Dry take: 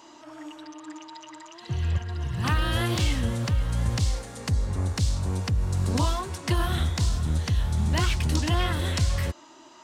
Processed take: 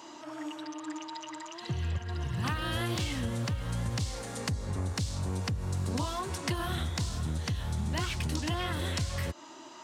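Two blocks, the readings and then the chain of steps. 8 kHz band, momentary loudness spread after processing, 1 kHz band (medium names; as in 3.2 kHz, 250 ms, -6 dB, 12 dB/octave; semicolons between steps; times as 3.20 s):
-4.0 dB, 8 LU, -4.5 dB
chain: high-pass 85 Hz; compression 3:1, threshold -33 dBFS, peak gain reduction 9.5 dB; trim +2 dB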